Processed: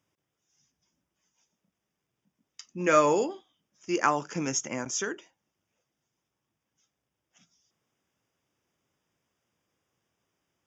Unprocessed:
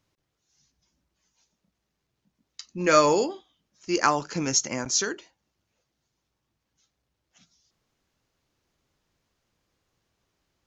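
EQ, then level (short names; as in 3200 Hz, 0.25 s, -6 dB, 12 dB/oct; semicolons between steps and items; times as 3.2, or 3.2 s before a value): HPF 110 Hz 12 dB/oct; dynamic EQ 5200 Hz, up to -7 dB, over -39 dBFS, Q 1.8; Butterworth band-stop 4200 Hz, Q 3.7; -2.5 dB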